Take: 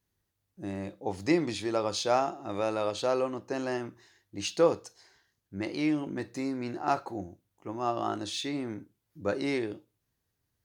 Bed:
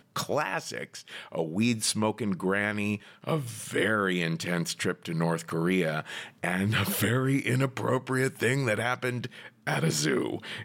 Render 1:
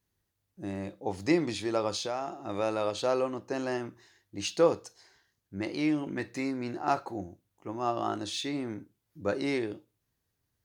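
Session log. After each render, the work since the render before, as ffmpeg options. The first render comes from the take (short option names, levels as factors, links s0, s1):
-filter_complex "[0:a]asettb=1/sr,asplit=3[s0][s1][s2];[s0]atrim=end=1.964[s3];[s1]atrim=start=1.96:end=2.39,asetpts=PTS-STARTPTS,afade=t=in:d=0.004:c=qsin,afade=t=out:st=0.426:d=0.004:c=qsin,acompressor=threshold=0.0282:ratio=3:attack=3.2:release=140:knee=1:detection=peak[s4];[s2]atrim=start=2.386[s5];[s3][s4]acrossfade=d=0.004:c1=hsin:c2=qsin[s6];[s6][s5]acrossfade=d=0.004:c1=qsin:c2=hsin,asettb=1/sr,asplit=3[s7][s8][s9];[s7]atrim=end=6.074[s10];[s8]atrim=start=6.07:end=6.51,asetpts=PTS-STARTPTS,afade=t=in:d=0.004:c=qsin,afade=t=out:st=0.436:d=0.004:c=qsin,equalizer=f=2200:t=o:w=1.1:g=6.5[s11];[s9]atrim=start=6.506[s12];[s10][s11]acrossfade=d=0.004:c1=hsin:c2=qsin[s13];[s13][s12]acrossfade=d=0.004:c1=qsin:c2=hsin"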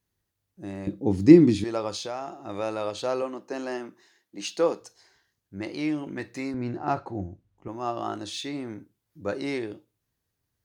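-filter_complex "[0:a]asettb=1/sr,asplit=3[s0][s1][s2];[s0]atrim=end=0.874[s3];[s1]atrim=start=0.87:end=1.64,asetpts=PTS-STARTPTS,afade=t=in:d=0.004:c=qsin,afade=t=out:st=0.766:d=0.004:c=qsin,lowshelf=f=430:t=q:w=1.5:g=13[s4];[s2]atrim=start=1.636[s5];[s3][s4]acrossfade=d=0.004:c1=hsin:c2=qsin[s6];[s6][s5]acrossfade=d=0.004:c1=qsin:c2=hsin,asettb=1/sr,asplit=3[s7][s8][s9];[s7]atrim=end=3.224[s10];[s8]atrim=start=3.22:end=4.8,asetpts=PTS-STARTPTS,afade=t=in:d=0.004:c=qsin,afade=t=out:st=1.576:d=0.004:c=qsin,highpass=f=180:w=0.5412,highpass=f=180:w=1.3066[s11];[s9]atrim=start=4.796[s12];[s10][s11]acrossfade=d=0.004:c1=hsin:c2=qsin[s13];[s13][s12]acrossfade=d=0.004:c1=qsin:c2=hsin,asettb=1/sr,asplit=3[s14][s15][s16];[s14]atrim=end=6.544[s17];[s15]atrim=start=6.54:end=7.68,asetpts=PTS-STARTPTS,afade=t=in:d=0.004:c=qsin,afade=t=out:st=1.136:d=0.004:c=qsin,aemphasis=mode=reproduction:type=bsi[s18];[s16]atrim=start=7.676[s19];[s17][s18]acrossfade=d=0.004:c1=hsin:c2=qsin[s20];[s20][s19]acrossfade=d=0.004:c1=qsin:c2=hsin"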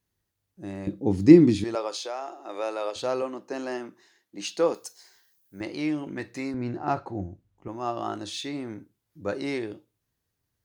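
-filter_complex "[0:a]asettb=1/sr,asplit=3[s0][s1][s2];[s0]atrim=end=1.754[s3];[s1]atrim=start=1.75:end=2.96,asetpts=PTS-STARTPTS,afade=t=in:d=0.004:c=qsin,afade=t=out:st=1.206:d=0.004:c=qsin,highpass=f=340:w=0.5412,highpass=f=340:w=1.3066[s4];[s2]atrim=start=2.956[s5];[s3][s4]acrossfade=d=0.004:c1=hsin:c2=qsin[s6];[s6][s5]acrossfade=d=0.004:c1=qsin:c2=hsin,asettb=1/sr,asplit=3[s7][s8][s9];[s7]atrim=end=4.744[s10];[s8]atrim=start=4.74:end=5.61,asetpts=PTS-STARTPTS,afade=t=in:d=0.004:c=qsin,afade=t=out:st=0.866:d=0.004:c=qsin,aemphasis=mode=production:type=bsi[s11];[s9]atrim=start=5.606[s12];[s10][s11]acrossfade=d=0.004:c1=hsin:c2=qsin[s13];[s13][s12]acrossfade=d=0.004:c1=qsin:c2=hsin"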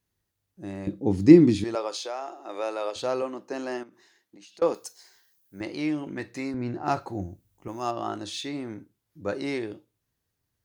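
-filter_complex "[0:a]asettb=1/sr,asplit=3[s0][s1][s2];[s0]atrim=end=3.834[s3];[s1]atrim=start=3.83:end=4.62,asetpts=PTS-STARTPTS,afade=t=in:d=0.004:c=qsin,afade=t=out:st=0.786:d=0.004:c=qsin,acompressor=threshold=0.00447:ratio=16:attack=3.2:release=140:knee=1:detection=peak[s4];[s2]atrim=start=4.616[s5];[s3][s4]acrossfade=d=0.004:c1=hsin:c2=qsin[s6];[s6][s5]acrossfade=d=0.004:c1=qsin:c2=hsin,asettb=1/sr,asplit=3[s7][s8][s9];[s7]atrim=end=6.854[s10];[s8]atrim=start=6.85:end=7.91,asetpts=PTS-STARTPTS,afade=t=in:d=0.004:c=qsin,afade=t=out:st=1.056:d=0.004:c=qsin,aemphasis=mode=production:type=75kf[s11];[s9]atrim=start=7.906[s12];[s10][s11]acrossfade=d=0.004:c1=hsin:c2=qsin[s13];[s13][s12]acrossfade=d=0.004:c1=qsin:c2=hsin"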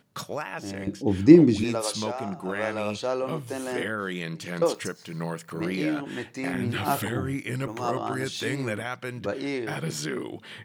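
-filter_complex "[1:a]volume=0.596[s0];[0:a][s0]amix=inputs=2:normalize=0"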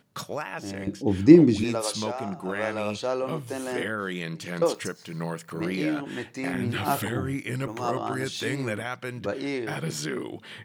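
-af anull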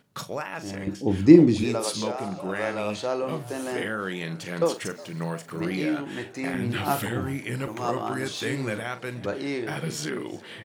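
-filter_complex "[0:a]asplit=2[s0][s1];[s1]adelay=42,volume=0.251[s2];[s0][s2]amix=inputs=2:normalize=0,asplit=6[s3][s4][s5][s6][s7][s8];[s4]adelay=363,afreqshift=82,volume=0.0841[s9];[s5]adelay=726,afreqshift=164,volume=0.0519[s10];[s6]adelay=1089,afreqshift=246,volume=0.0324[s11];[s7]adelay=1452,afreqshift=328,volume=0.02[s12];[s8]adelay=1815,afreqshift=410,volume=0.0124[s13];[s3][s9][s10][s11][s12][s13]amix=inputs=6:normalize=0"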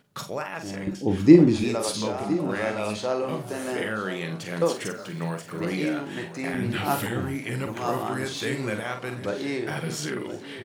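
-filter_complex "[0:a]asplit=2[s0][s1];[s1]adelay=47,volume=0.335[s2];[s0][s2]amix=inputs=2:normalize=0,aecho=1:1:1012:0.211"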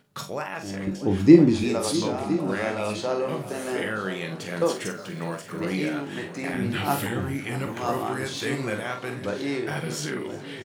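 -filter_complex "[0:a]asplit=2[s0][s1];[s1]adelay=21,volume=0.299[s2];[s0][s2]amix=inputs=2:normalize=0,asplit=2[s3][s4];[s4]adelay=641.4,volume=0.178,highshelf=f=4000:g=-14.4[s5];[s3][s5]amix=inputs=2:normalize=0"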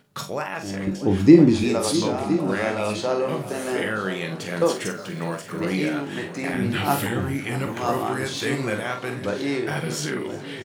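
-af "volume=1.41,alimiter=limit=0.794:level=0:latency=1"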